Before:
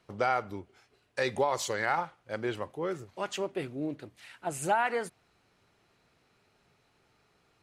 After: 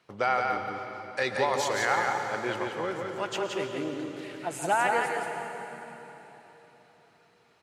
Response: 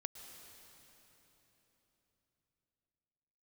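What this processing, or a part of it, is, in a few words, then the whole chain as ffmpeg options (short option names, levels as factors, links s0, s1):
PA in a hall: -filter_complex "[0:a]highpass=100,equalizer=f=2000:t=o:w=3:g=5,aecho=1:1:173:0.631[s0];[1:a]atrim=start_sample=2205[s1];[s0][s1]afir=irnorm=-1:irlink=0,volume=1.26"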